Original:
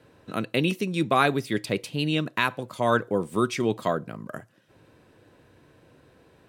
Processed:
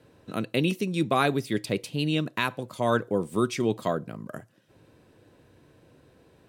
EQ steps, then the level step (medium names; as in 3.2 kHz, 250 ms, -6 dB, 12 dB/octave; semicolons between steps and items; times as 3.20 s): peaking EQ 1.5 kHz -4 dB 2.2 oct; 0.0 dB